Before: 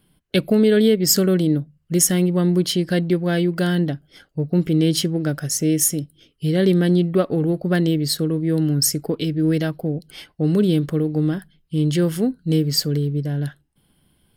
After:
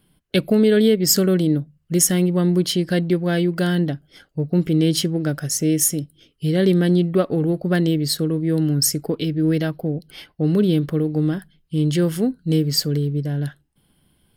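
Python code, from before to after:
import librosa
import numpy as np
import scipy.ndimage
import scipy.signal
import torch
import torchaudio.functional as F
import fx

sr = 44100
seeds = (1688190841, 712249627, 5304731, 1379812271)

y = fx.peak_eq(x, sr, hz=7600.0, db=-8.0, octaves=0.55, at=(9.2, 10.98))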